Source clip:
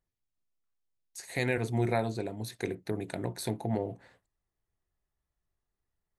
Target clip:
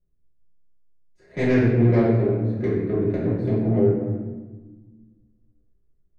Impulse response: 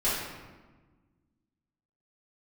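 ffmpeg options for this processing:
-filter_complex "[0:a]equalizer=f=840:w=2.2:g=-14.5,adynamicsmooth=sensitivity=1:basefreq=730[s0];[1:a]atrim=start_sample=2205[s1];[s0][s1]afir=irnorm=-1:irlink=0,volume=1.33"

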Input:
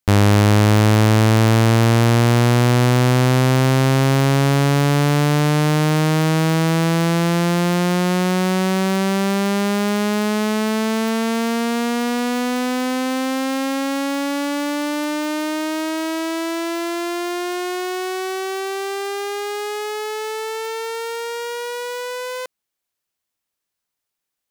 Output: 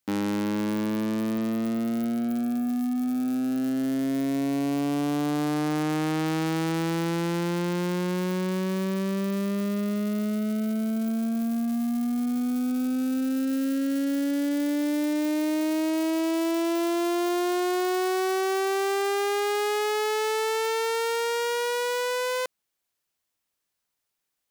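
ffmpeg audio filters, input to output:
-af "aeval=exprs='0.0841*(abs(mod(val(0)/0.0841+3,4)-2)-1)':c=same"

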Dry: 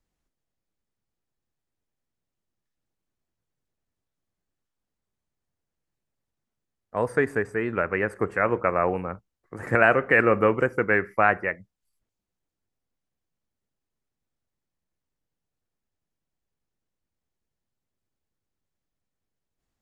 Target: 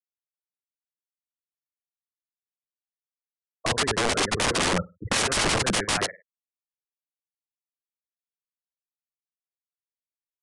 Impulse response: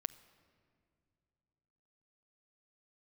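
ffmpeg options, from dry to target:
-filter_complex "[0:a]afftfilt=real='re*gte(hypot(re,im),0.1)':imag='im*gte(hypot(re,im),0.1)':win_size=1024:overlap=0.75,lowshelf=f=430:g=2.5,acrossover=split=210|1100[s0][s1][s2];[s0]acontrast=32[s3];[s3][s1][s2]amix=inputs=3:normalize=0,aecho=1:1:97|194|291:0.126|0.0378|0.0113,apsyclip=2.11,aeval=exprs='(mod(6.68*val(0)+1,2)-1)/6.68':c=same,atempo=1.9,aresample=22050,aresample=44100"

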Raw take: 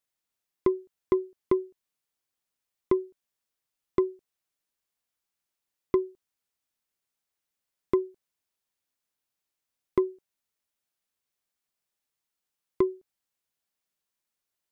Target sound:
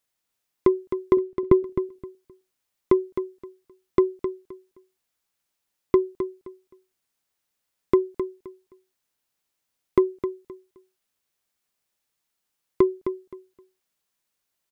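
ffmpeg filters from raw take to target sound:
-filter_complex "[0:a]asettb=1/sr,asplit=3[s0][s1][s2];[s0]atrim=end=1.174[s3];[s1]atrim=start=1.17:end=1.63,asetpts=PTS-STARTPTS,afade=t=in:d=0.004:c=qsin,afade=t=out:st=0.456:d=0.004:c=qsin,bass=f=250:g=11,treble=f=4000:g=-9[s4];[s2]atrim=start=1.626[s5];[s3][s4]acrossfade=d=0.004:c1=hsin:c2=qsin[s6];[s6][s5]acrossfade=d=0.004:c1=qsin:c2=hsin,aecho=1:1:261|522|783:0.335|0.0703|0.0148,volume=1.88"

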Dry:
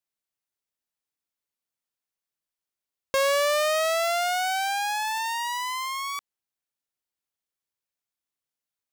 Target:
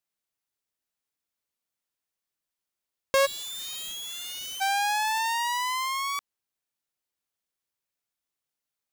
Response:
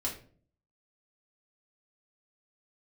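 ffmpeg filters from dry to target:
-filter_complex "[0:a]asplit=3[s0][s1][s2];[s0]afade=t=out:st=3.25:d=0.02[s3];[s1]aeval=exprs='(mod(47.3*val(0)+1,2)-1)/47.3':c=same,afade=t=in:st=3.25:d=0.02,afade=t=out:st=4.6:d=0.02[s4];[s2]afade=t=in:st=4.6:d=0.02[s5];[s3][s4][s5]amix=inputs=3:normalize=0,volume=1.19"

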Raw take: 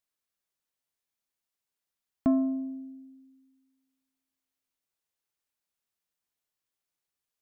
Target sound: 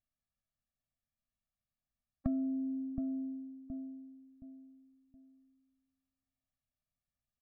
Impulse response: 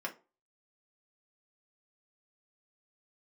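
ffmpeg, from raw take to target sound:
-filter_complex "[0:a]aemphasis=mode=reproduction:type=riaa,asplit=2[s0][s1];[s1]adelay=720,lowpass=f=950:p=1,volume=0.251,asplit=2[s2][s3];[s3]adelay=720,lowpass=f=950:p=1,volume=0.35,asplit=2[s4][s5];[s5]adelay=720,lowpass=f=950:p=1,volume=0.35,asplit=2[s6][s7];[s7]adelay=720,lowpass=f=950:p=1,volume=0.35[s8];[s0][s2][s4][s6][s8]amix=inputs=5:normalize=0,asplit=2[s9][s10];[1:a]atrim=start_sample=2205,adelay=5[s11];[s10][s11]afir=irnorm=-1:irlink=0,volume=0.158[s12];[s9][s12]amix=inputs=2:normalize=0,acompressor=threshold=0.0355:ratio=4,afftfilt=real='re*eq(mod(floor(b*sr/1024/270),2),0)':imag='im*eq(mod(floor(b*sr/1024/270),2),0)':win_size=1024:overlap=0.75,volume=0.668"

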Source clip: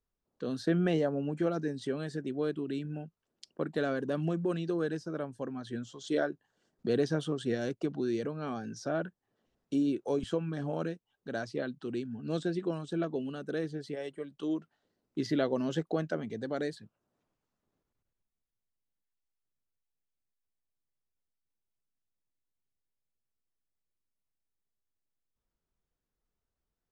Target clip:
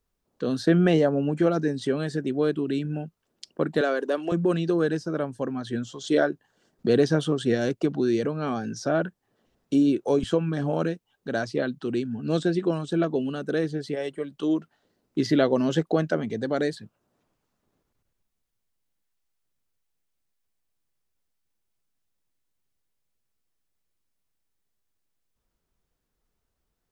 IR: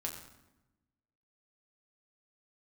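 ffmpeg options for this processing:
-filter_complex "[0:a]asettb=1/sr,asplit=3[s0][s1][s2];[s0]atrim=end=3.814[s3];[s1]atrim=start=3.81:end=4.32,asetpts=PTS-STARTPTS,afade=t=in:d=0.004:c=qsin,afade=t=out:st=0.506:d=0.004:c=qsin,highpass=f=330:w=0.5412,highpass=f=330:w=1.3066[s4];[s2]atrim=start=4.316[s5];[s3][s4]acrossfade=d=0.004:c1=hsin:c2=qsin[s6];[s6][s5]acrossfade=d=0.004:c1=qsin:c2=hsin,volume=2.66"

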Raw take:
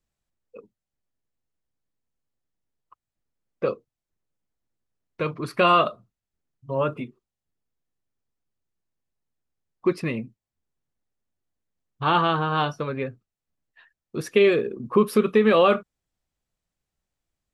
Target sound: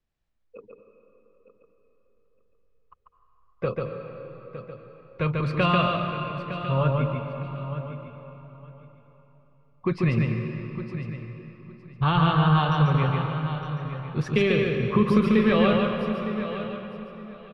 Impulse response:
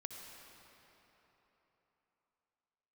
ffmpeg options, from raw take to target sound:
-filter_complex "[0:a]asubboost=boost=10:cutoff=100,lowpass=4100,acrossover=split=300|3000[s0][s1][s2];[s1]acompressor=threshold=0.0708:ratio=6[s3];[s0][s3][s2]amix=inputs=3:normalize=0,aecho=1:1:910|1820:0.251|0.0477,asplit=2[s4][s5];[1:a]atrim=start_sample=2205,adelay=142[s6];[s5][s6]afir=irnorm=-1:irlink=0,volume=1.26[s7];[s4][s7]amix=inputs=2:normalize=0"

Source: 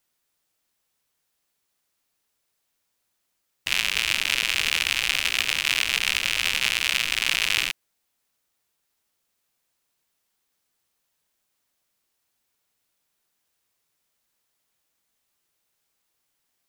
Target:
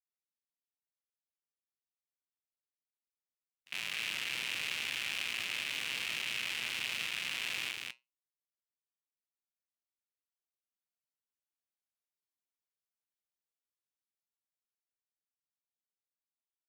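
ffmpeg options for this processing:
-af "highpass=f=110:w=0.5412,highpass=f=110:w=1.3066,agate=range=0.02:threshold=0.0708:ratio=16:detection=peak,dynaudnorm=f=530:g=11:m=3.76,alimiter=limit=0.1:level=0:latency=1:release=16,flanger=delay=7.4:depth=1.8:regen=-77:speed=0.88:shape=triangular,aecho=1:1:40.82|195.3:0.316|0.708,volume=1.19"

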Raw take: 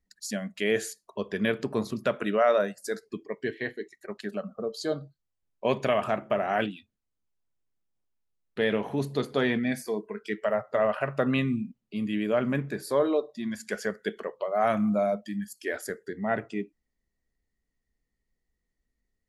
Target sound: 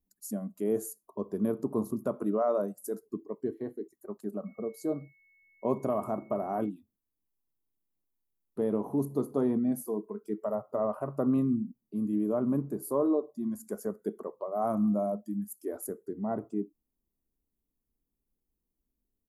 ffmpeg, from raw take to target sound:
-filter_complex "[0:a]firequalizer=gain_entry='entry(120,0);entry(300,7);entry(500,-1);entry(740,-1);entry(1100,1);entry(1700,-23);entry(3100,-26);entry(6200,-7);entry(12000,11)':delay=0.05:min_phase=1,asettb=1/sr,asplit=3[s0][s1][s2];[s0]atrim=end=4.464[s3];[s1]atrim=start=4.46:end=6.69,asetpts=PTS-STARTPTS,afade=t=in:d=0.004:c=qsin,afade=t=out:st=2.226:d=0.004:c=qsin,aeval=exprs='val(0)+0.00126*sin(2*PI*2200*n/s)':c=same[s4];[s2]atrim=start=6.686[s5];[s3][s4]acrossfade=d=0.004:c1=hsin:c2=qsin[s6];[s6][s5]acrossfade=d=0.004:c1=qsin:c2=hsin,volume=0.596"

